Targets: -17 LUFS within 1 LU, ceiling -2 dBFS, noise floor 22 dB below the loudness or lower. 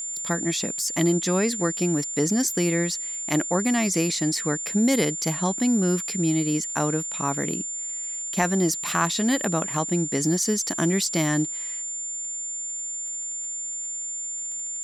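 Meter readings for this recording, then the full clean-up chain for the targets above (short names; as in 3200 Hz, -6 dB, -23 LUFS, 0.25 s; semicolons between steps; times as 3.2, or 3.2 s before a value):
ticks 35/s; steady tone 7200 Hz; tone level -29 dBFS; loudness -24.5 LUFS; peak -8.5 dBFS; loudness target -17.0 LUFS
-> de-click; notch 7200 Hz, Q 30; gain +7.5 dB; limiter -2 dBFS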